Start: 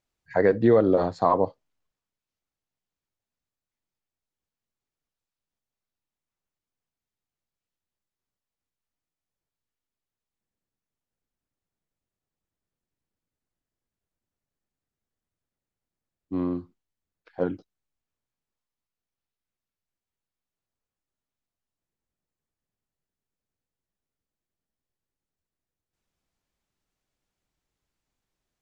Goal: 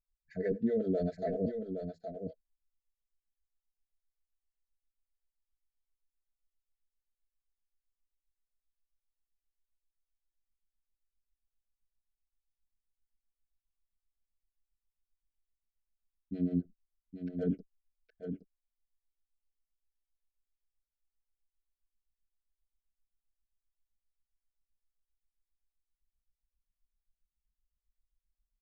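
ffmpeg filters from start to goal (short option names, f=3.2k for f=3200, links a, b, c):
-filter_complex "[0:a]anlmdn=0.00251,bass=f=250:g=12,treble=f=4k:g=7,aecho=1:1:4.6:0.87,adynamicequalizer=threshold=0.0355:dfrequency=590:dqfactor=0.8:tfrequency=590:tqfactor=0.8:attack=5:release=100:ratio=0.375:range=3.5:mode=boostabove:tftype=bell,areverse,acompressor=threshold=-22dB:ratio=5,areverse,acrossover=split=420[a][b];[a]aeval=exprs='val(0)*(1-1/2+1/2*cos(2*PI*7.6*n/s))':c=same[c];[b]aeval=exprs='val(0)*(1-1/2-1/2*cos(2*PI*7.6*n/s))':c=same[d];[c][d]amix=inputs=2:normalize=0,asuperstop=centerf=1000:order=8:qfactor=1.3,aecho=1:1:817:0.422,volume=-3dB"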